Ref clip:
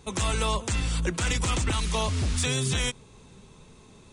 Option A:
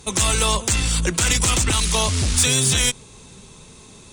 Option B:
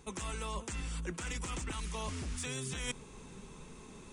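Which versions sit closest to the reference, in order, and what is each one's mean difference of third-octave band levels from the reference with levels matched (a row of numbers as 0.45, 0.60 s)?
A, B; 3.5, 5.0 dB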